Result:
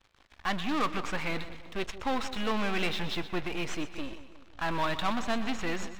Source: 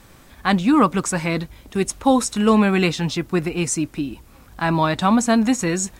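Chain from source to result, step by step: half-wave gain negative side -12 dB; ladder low-pass 4300 Hz, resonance 30%; sample leveller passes 3; bell 180 Hz -8.5 dB 2.1 oct; split-band echo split 1000 Hz, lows 0.177 s, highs 0.123 s, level -13 dB; gain -6.5 dB

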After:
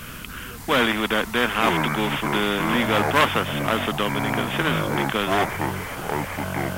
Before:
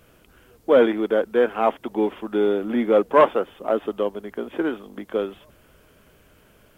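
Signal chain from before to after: band shelf 510 Hz -11.5 dB; echoes that change speed 0.575 s, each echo -7 st, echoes 2, each echo -6 dB; spectral compressor 2:1; gain +6 dB

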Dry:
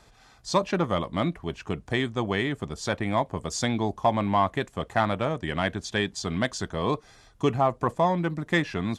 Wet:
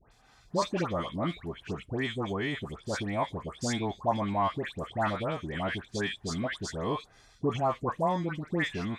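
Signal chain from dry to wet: dispersion highs, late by 0.117 s, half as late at 1600 Hz; gain -5 dB

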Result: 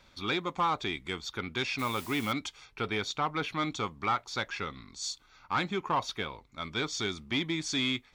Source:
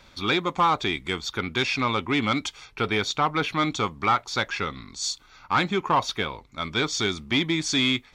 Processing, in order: 1.78–2.31 added noise white -40 dBFS; gain -7.5 dB

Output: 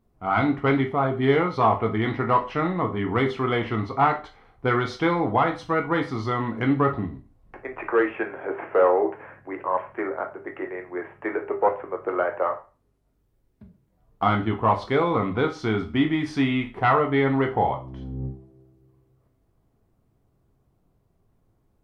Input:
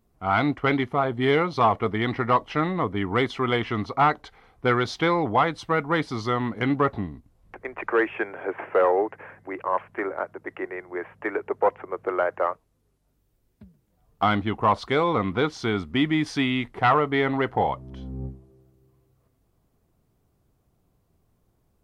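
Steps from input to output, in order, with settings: high shelf 2400 Hz -8.5 dB; on a send: reverb RT60 0.30 s, pre-delay 10 ms, DRR 3.5 dB

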